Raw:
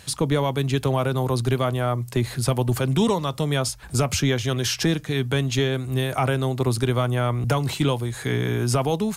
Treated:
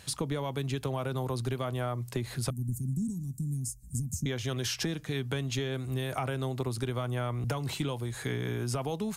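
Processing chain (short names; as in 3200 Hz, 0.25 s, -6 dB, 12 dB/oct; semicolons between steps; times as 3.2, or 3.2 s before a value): 2.5–4.26 elliptic band-stop 230–7200 Hz, stop band 40 dB; compressor, threshold -23 dBFS, peak gain reduction 7 dB; gain -5.5 dB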